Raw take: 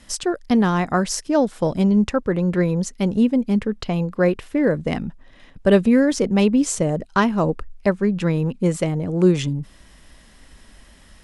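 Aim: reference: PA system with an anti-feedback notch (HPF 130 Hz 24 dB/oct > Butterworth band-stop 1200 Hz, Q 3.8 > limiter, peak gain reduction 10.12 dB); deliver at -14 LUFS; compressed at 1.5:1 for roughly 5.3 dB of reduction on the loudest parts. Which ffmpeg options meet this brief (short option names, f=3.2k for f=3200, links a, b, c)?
-af "acompressor=threshold=-25dB:ratio=1.5,highpass=f=130:w=0.5412,highpass=f=130:w=1.3066,asuperstop=centerf=1200:order=8:qfactor=3.8,volume=14dB,alimiter=limit=-4.5dB:level=0:latency=1"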